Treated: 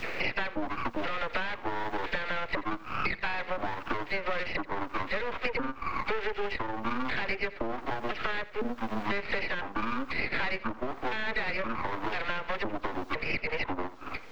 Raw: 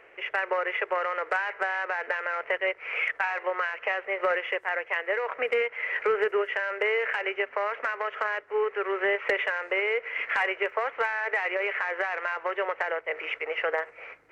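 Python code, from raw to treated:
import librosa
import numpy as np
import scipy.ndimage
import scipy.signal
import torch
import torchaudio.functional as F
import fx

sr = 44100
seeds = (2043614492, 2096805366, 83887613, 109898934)

y = fx.pitch_trill(x, sr, semitones=-10.0, every_ms=504)
y = fx.peak_eq(y, sr, hz=2500.0, db=9.5, octaves=0.47)
y = fx.dispersion(y, sr, late='lows', ms=46.0, hz=2700.0)
y = fx.dmg_noise_colour(y, sr, seeds[0], colour='violet', level_db=-53.0)
y = y + 10.0 ** (-19.0 / 20.0) * np.pad(y, (int(84 * sr / 1000.0), 0))[:len(y)]
y = np.maximum(y, 0.0)
y = fx.air_absorb(y, sr, metres=210.0)
y = fx.band_squash(y, sr, depth_pct=100)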